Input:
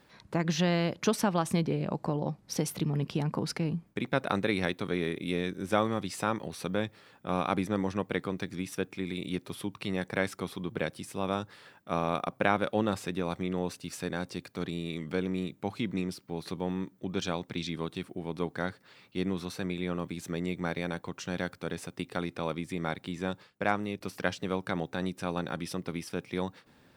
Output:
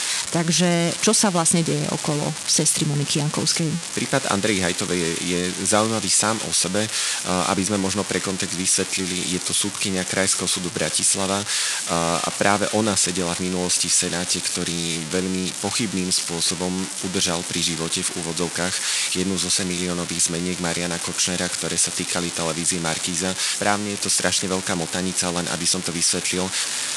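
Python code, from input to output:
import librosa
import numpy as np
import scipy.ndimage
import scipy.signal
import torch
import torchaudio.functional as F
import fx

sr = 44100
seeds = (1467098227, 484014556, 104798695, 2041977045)

y = x + 0.5 * 10.0 ** (-17.0 / 20.0) * np.diff(np.sign(x), prepend=np.sign(x[:1]))
y = scipy.signal.sosfilt(scipy.signal.butter(8, 9900.0, 'lowpass', fs=sr, output='sos'), y)
y = y * 10.0 ** (7.5 / 20.0)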